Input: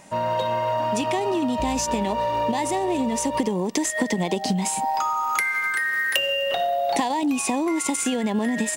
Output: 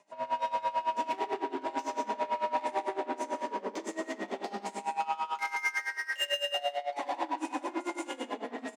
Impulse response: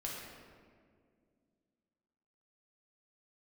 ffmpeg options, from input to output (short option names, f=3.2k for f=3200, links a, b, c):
-filter_complex "[0:a]acrossover=split=4600[a][b];[a]volume=18.5dB,asoftclip=hard,volume=-18.5dB[c];[c][b]amix=inputs=2:normalize=0,afreqshift=18,lowpass=6.3k[d];[1:a]atrim=start_sample=2205,asetrate=61740,aresample=44100[e];[d][e]afir=irnorm=-1:irlink=0,asplit=2[f][g];[g]adynamicsmooth=sensitivity=5:basefreq=730,volume=0.5dB[h];[f][h]amix=inputs=2:normalize=0,asoftclip=type=tanh:threshold=-15dB,highpass=450,aecho=1:1:119.5|177.8:0.282|0.447,aeval=exprs='val(0)*pow(10,-19*(0.5-0.5*cos(2*PI*9*n/s))/20)':c=same,volume=-6.5dB"